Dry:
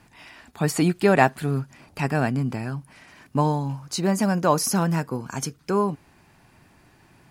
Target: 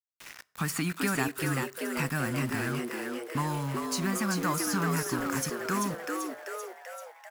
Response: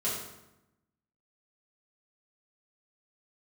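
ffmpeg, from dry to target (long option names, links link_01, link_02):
-filter_complex "[0:a]aemphasis=mode=production:type=50kf,agate=range=-8dB:threshold=-46dB:ratio=16:detection=peak,firequalizer=gain_entry='entry(260,0);entry(480,-14);entry(1200,10);entry(3700,-1)':delay=0.05:min_phase=1,acrossover=split=640|5800[link_01][link_02][link_03];[link_01]acompressor=threshold=-26dB:ratio=4[link_04];[link_02]acompressor=threshold=-31dB:ratio=4[link_05];[link_03]acompressor=threshold=-34dB:ratio=4[link_06];[link_04][link_05][link_06]amix=inputs=3:normalize=0,aeval=exprs='val(0)*gte(abs(val(0)),0.0178)':channel_layout=same,asplit=9[link_07][link_08][link_09][link_10][link_11][link_12][link_13][link_14][link_15];[link_08]adelay=388,afreqshift=110,volume=-4dB[link_16];[link_09]adelay=776,afreqshift=220,volume=-8.6dB[link_17];[link_10]adelay=1164,afreqshift=330,volume=-13.2dB[link_18];[link_11]adelay=1552,afreqshift=440,volume=-17.7dB[link_19];[link_12]adelay=1940,afreqshift=550,volume=-22.3dB[link_20];[link_13]adelay=2328,afreqshift=660,volume=-26.9dB[link_21];[link_14]adelay=2716,afreqshift=770,volume=-31.5dB[link_22];[link_15]adelay=3104,afreqshift=880,volume=-36.1dB[link_23];[link_07][link_16][link_17][link_18][link_19][link_20][link_21][link_22][link_23]amix=inputs=9:normalize=0,asplit=2[link_24][link_25];[1:a]atrim=start_sample=2205,atrim=end_sample=6174,adelay=11[link_26];[link_25][link_26]afir=irnorm=-1:irlink=0,volume=-28.5dB[link_27];[link_24][link_27]amix=inputs=2:normalize=0,volume=-3.5dB"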